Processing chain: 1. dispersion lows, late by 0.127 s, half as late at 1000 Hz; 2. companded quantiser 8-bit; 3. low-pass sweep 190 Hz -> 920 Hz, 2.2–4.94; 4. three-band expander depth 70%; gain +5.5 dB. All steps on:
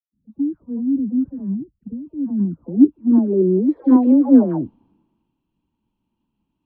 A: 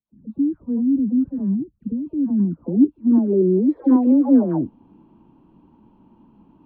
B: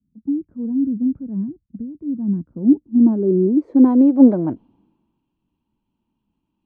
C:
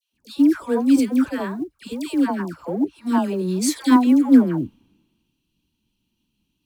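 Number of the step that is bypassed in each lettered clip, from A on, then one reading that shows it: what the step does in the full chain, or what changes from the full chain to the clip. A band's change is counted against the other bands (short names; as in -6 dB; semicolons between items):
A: 4, 125 Hz band +1.5 dB; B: 1, momentary loudness spread change +1 LU; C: 3, 1 kHz band +11.5 dB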